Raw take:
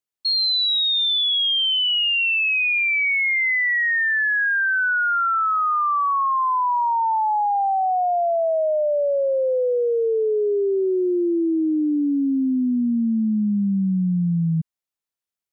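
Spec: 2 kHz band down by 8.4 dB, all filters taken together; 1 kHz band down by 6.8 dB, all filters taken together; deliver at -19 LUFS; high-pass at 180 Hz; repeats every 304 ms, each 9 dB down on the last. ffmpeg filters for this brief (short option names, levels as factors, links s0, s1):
-af "highpass=180,equalizer=f=1000:t=o:g=-6.5,equalizer=f=2000:t=o:g=-9,aecho=1:1:304|608|912|1216:0.355|0.124|0.0435|0.0152,volume=1.58"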